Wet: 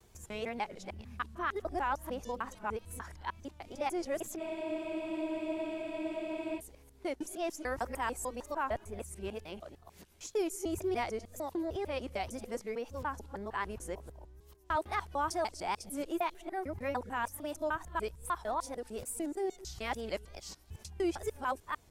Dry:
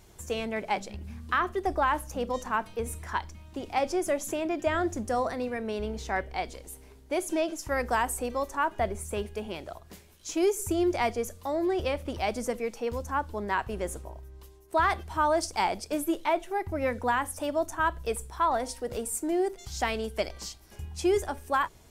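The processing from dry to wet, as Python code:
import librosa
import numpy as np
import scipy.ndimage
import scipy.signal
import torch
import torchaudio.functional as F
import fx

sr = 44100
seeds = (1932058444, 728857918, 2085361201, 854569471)

y = fx.local_reverse(x, sr, ms=150.0)
y = fx.wow_flutter(y, sr, seeds[0], rate_hz=2.1, depth_cents=98.0)
y = fx.spec_freeze(y, sr, seeds[1], at_s=4.41, hold_s=2.18)
y = y * 10.0 ** (-7.5 / 20.0)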